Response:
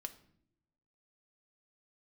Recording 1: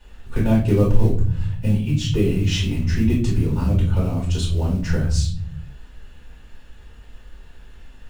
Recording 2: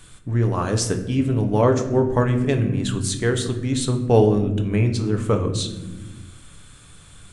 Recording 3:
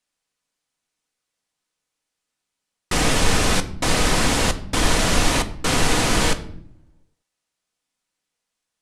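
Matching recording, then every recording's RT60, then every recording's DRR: 3; 0.50 s, not exponential, not exponential; -6.5, 4.5, 7.0 dB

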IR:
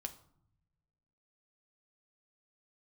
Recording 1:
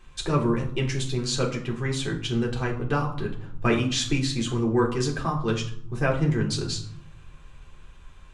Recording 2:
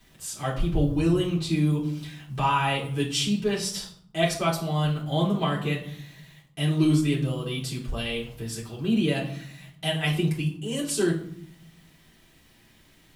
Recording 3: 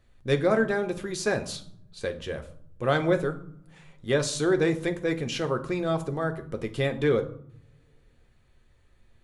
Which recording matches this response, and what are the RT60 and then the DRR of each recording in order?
3; 0.65, 0.65, 0.70 s; -2.5, -8.5, 5.5 dB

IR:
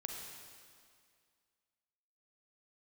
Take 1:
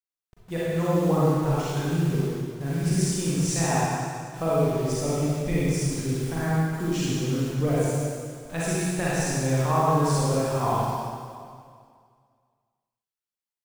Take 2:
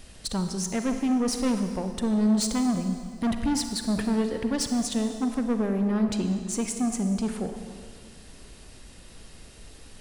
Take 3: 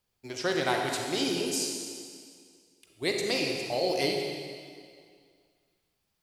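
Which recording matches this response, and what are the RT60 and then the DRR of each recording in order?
3; 2.1, 2.1, 2.1 s; -9.0, 6.0, 1.0 dB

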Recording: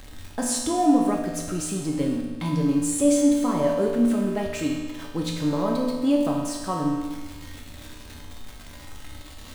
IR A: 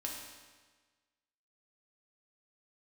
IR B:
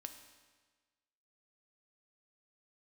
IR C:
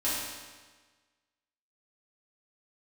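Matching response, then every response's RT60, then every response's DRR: A; 1.4, 1.4, 1.4 s; -2.0, 6.0, -11.0 dB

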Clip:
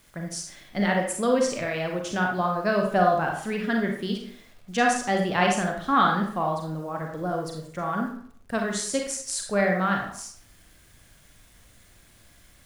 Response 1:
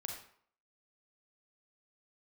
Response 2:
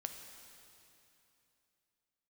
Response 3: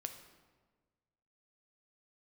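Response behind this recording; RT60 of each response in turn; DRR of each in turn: 1; 0.60, 2.9, 1.4 s; 1.0, 5.0, 6.5 dB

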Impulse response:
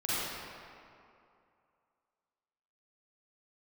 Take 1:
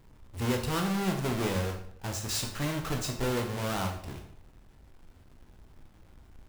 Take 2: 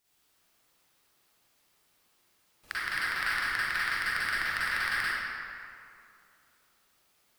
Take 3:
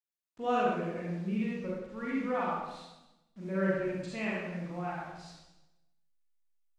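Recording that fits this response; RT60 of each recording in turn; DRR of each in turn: 2; 0.65, 2.5, 0.95 s; 2.5, -11.0, -6.5 dB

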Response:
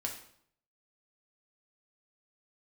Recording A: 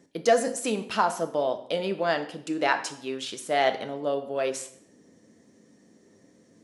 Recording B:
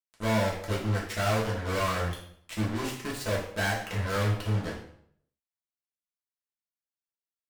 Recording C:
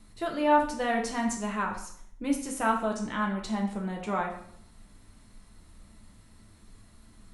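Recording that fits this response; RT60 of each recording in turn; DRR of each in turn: C; 0.65, 0.65, 0.65 s; 6.5, -5.5, 0.0 dB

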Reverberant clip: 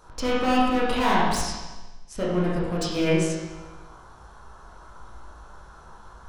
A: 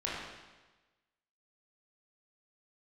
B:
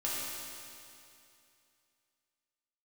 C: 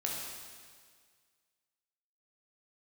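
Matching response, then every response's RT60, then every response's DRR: A; 1.2, 2.6, 1.8 s; -7.0, -7.5, -3.0 dB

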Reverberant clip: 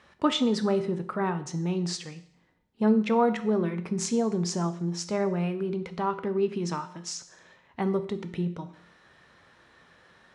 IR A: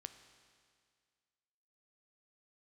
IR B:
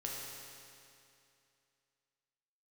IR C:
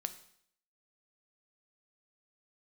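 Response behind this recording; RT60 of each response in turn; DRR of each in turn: C; 2.0, 2.6, 0.65 s; 9.0, -3.5, 9.5 dB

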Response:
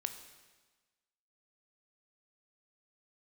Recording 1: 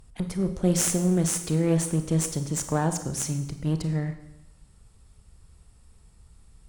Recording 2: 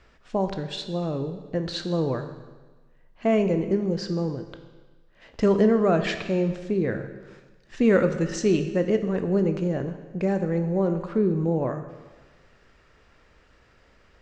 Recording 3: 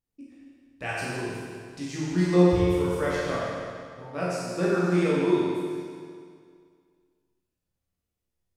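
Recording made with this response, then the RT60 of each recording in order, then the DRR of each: 2; 0.85, 1.3, 2.1 s; 8.0, 7.5, -9.0 dB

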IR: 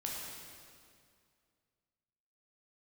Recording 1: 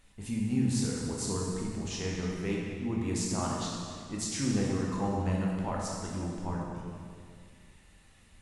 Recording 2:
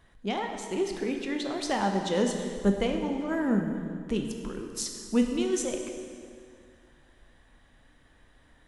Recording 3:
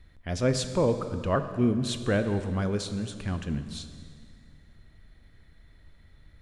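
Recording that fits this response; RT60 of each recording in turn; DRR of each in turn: 1; 2.2, 2.2, 2.2 s; -3.5, 3.5, 9.0 dB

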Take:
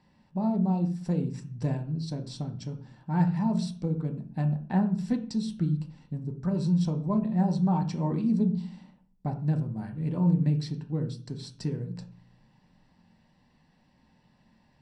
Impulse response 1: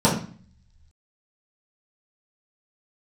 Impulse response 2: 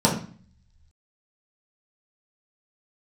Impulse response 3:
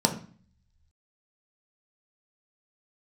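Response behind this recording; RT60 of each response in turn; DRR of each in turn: 3; 0.45, 0.45, 0.45 s; -9.5, -5.0, 3.0 dB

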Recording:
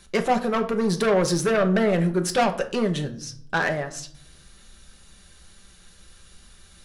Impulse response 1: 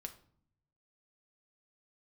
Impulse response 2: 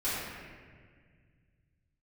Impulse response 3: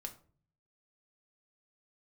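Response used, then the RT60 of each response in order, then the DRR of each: 1; 0.60, 1.8, 0.45 s; 4.5, -14.0, 3.0 dB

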